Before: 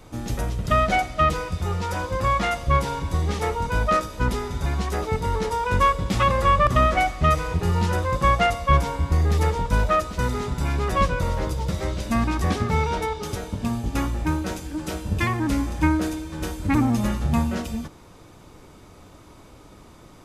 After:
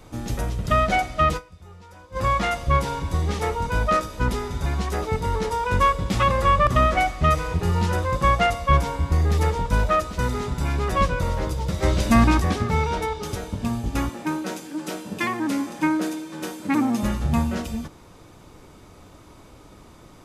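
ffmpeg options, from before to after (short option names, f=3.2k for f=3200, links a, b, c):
-filter_complex "[0:a]asplit=3[a][b][c];[a]afade=t=out:st=11.82:d=0.02[d];[b]acontrast=78,afade=t=in:st=11.82:d=0.02,afade=t=out:st=12.39:d=0.02[e];[c]afade=t=in:st=12.39:d=0.02[f];[d][e][f]amix=inputs=3:normalize=0,asettb=1/sr,asplit=3[g][h][i];[g]atrim=end=14.094[j];[h]atrim=start=14.09:end=17.03,asetpts=PTS-STARTPTS,afade=t=in:d=0.004:c=qsin,afade=t=out:st=2.936:d=0.004:c=qsin,highpass=f=180:w=0.5412,highpass=f=180:w=1.3066[k];[i]atrim=start=17.026[l];[j][k]acrossfade=d=0.004:c1=hsin:c2=qsin[m];[m][l]acrossfade=d=0.004:c1=qsin:c2=hsin,asplit=3[n][o][p];[n]atrim=end=1.55,asetpts=PTS-STARTPTS,afade=t=out:st=1.37:d=0.18:c=exp:silence=0.112202[q];[o]atrim=start=1.55:end=1.99,asetpts=PTS-STARTPTS,volume=-19dB[r];[p]atrim=start=1.99,asetpts=PTS-STARTPTS,afade=t=in:d=0.18:c=exp:silence=0.112202[s];[q][r][s]concat=n=3:v=0:a=1"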